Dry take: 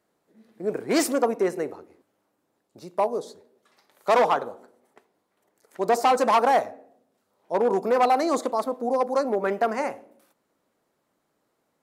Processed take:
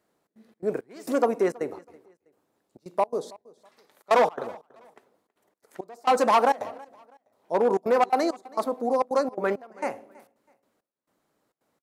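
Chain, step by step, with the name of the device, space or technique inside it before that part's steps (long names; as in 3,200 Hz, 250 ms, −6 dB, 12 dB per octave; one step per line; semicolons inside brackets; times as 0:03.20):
trance gate with a delay (gate pattern "xxx.xx.xx...xx" 168 BPM −24 dB; repeating echo 325 ms, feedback 28%, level −23 dB)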